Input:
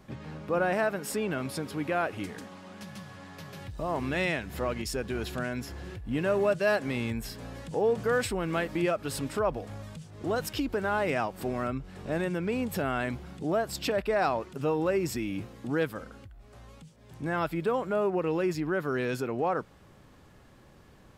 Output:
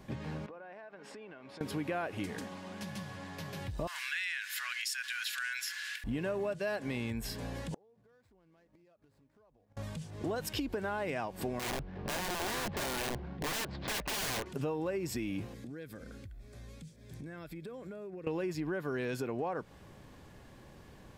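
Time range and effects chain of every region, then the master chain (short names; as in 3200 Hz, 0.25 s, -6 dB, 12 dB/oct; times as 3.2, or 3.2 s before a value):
0.46–1.61 HPF 870 Hz 6 dB/oct + tape spacing loss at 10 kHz 29 dB + compressor 8:1, threshold -47 dBFS
3.87–6.04 elliptic high-pass 1500 Hz, stop band 80 dB + fast leveller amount 50%
7.74–9.77 median filter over 15 samples + compressor 10:1, threshold -32 dBFS + flipped gate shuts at -34 dBFS, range -31 dB
11.59–14.46 median filter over 15 samples + LPF 4200 Hz 24 dB/oct + wrapped overs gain 29.5 dB
15.54–18.27 bell 900 Hz -13.5 dB 0.86 oct + notch 2900 Hz, Q 7.2 + compressor 8:1, threshold -43 dBFS
whole clip: notch 1300 Hz, Q 9.3; compressor, threshold -34 dBFS; gain +1.5 dB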